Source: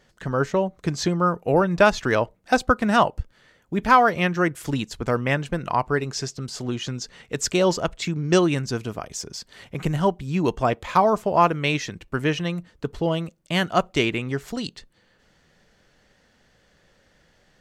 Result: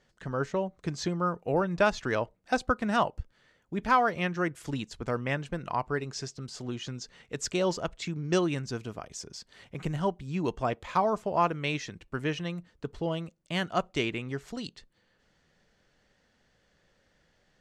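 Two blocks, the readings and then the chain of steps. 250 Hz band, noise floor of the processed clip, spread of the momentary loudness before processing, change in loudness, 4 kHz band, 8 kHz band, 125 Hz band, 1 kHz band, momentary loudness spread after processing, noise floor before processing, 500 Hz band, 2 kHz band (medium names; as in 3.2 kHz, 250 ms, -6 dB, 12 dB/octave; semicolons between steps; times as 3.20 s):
-8.0 dB, -70 dBFS, 13 LU, -8.0 dB, -8.0 dB, -8.5 dB, -8.0 dB, -8.0 dB, 13 LU, -62 dBFS, -8.0 dB, -8.0 dB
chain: low-pass 9.6 kHz 12 dB/octave; trim -8 dB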